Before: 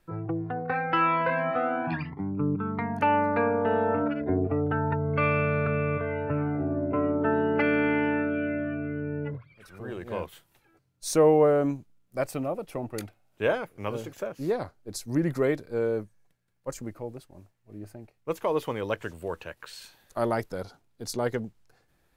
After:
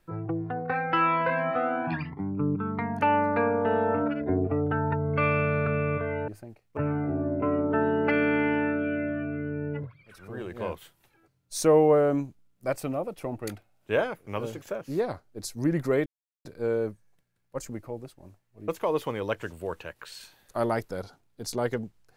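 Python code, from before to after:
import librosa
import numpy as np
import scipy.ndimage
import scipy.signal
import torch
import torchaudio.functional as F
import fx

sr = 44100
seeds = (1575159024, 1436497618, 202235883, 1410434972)

y = fx.edit(x, sr, fx.insert_silence(at_s=15.57, length_s=0.39),
    fx.move(start_s=17.8, length_s=0.49, to_s=6.28), tone=tone)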